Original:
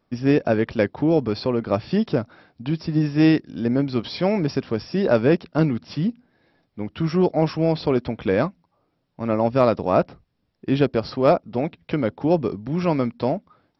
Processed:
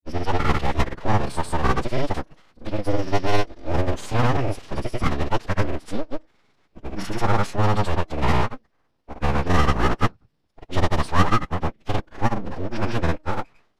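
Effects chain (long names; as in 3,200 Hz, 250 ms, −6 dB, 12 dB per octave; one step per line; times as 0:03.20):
full-wave rectification
granular cloud, grains 20 per second
phase-vocoder pitch shift with formants kept −7.5 semitones
level +2.5 dB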